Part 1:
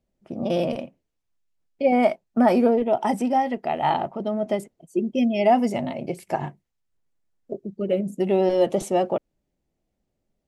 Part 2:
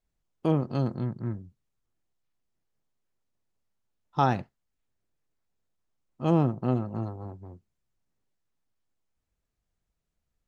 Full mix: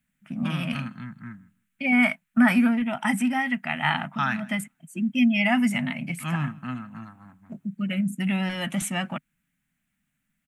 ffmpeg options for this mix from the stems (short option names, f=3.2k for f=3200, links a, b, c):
-filter_complex "[0:a]lowshelf=f=200:g=-7,volume=-1dB[a];[1:a]highpass=f=540:p=1,volume=-1.5dB,asplit=3[b][c][d];[c]volume=-22.5dB[e];[d]apad=whole_len=461832[f];[a][f]sidechaincompress=threshold=-32dB:ratio=8:attack=35:release=309[g];[e]aecho=0:1:159|318|477:1|0.16|0.0256[h];[g][b][h]amix=inputs=3:normalize=0,firequalizer=gain_entry='entry(100,0);entry(150,10);entry(250,5);entry(400,-26);entry(640,-11);entry(1500,12);entry(2300,12);entry(4700,-4);entry(8400,9)':delay=0.05:min_phase=1"